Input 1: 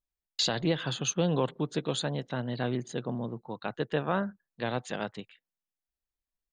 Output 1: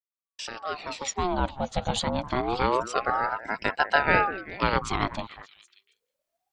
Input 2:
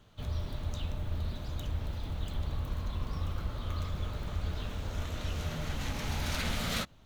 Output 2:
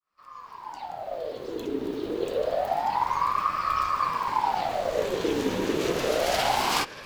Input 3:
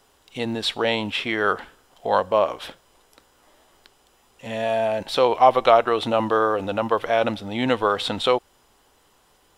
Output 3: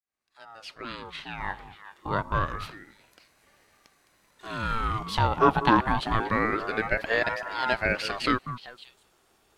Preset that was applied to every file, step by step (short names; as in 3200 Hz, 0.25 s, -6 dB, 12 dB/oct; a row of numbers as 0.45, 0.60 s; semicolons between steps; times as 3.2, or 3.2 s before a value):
opening faded in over 2.98 s; delay with a stepping band-pass 0.193 s, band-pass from 520 Hz, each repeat 1.4 oct, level -9.5 dB; ring modulator with a swept carrier 770 Hz, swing 55%, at 0.27 Hz; match loudness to -27 LUFS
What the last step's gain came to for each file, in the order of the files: +10.5, +10.5, -2.5 dB